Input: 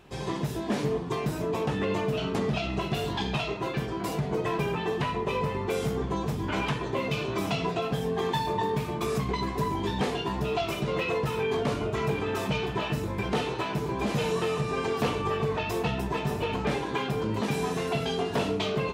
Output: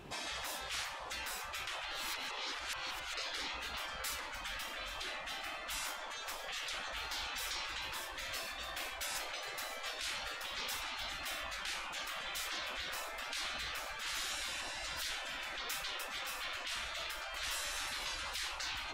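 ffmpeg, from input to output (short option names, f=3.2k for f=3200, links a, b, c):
-filter_complex "[0:a]asettb=1/sr,asplit=3[a][b][c];[a]atrim=end=16.824[d];[b]atrim=start=16.82:end=17.77,asetpts=PTS-STARTPTS,afade=t=in:d=0.004:c=qsin,afade=t=out:st=0.946:d=0.004:c=qsin,equalizer=f=180:t=o:w=0.77:g=6[e];[c]atrim=start=17.766[f];[d][e]acrossfade=d=0.004:c1=hsin:c2=qsin[g];[g][f]acrossfade=d=0.004:c1=qsin:c2=hsin,asplit=3[h][i][j];[h]atrim=end=1.912[k];[i]atrim=start=1.908:end=3.172,asetpts=PTS-STARTPTS,areverse[l];[j]atrim=start=3.168[m];[k][l]acrossfade=d=0.004:c1=hsin:c2=hsin[n];[n][m]acrossfade=d=0.004:c1=hsin:c2=hsin,afftfilt=real='re*lt(hypot(re,im),0.0316)':imag='im*lt(hypot(re,im),0.0316)':win_size=1024:overlap=0.75,asubboost=boost=3:cutoff=55,volume=2dB"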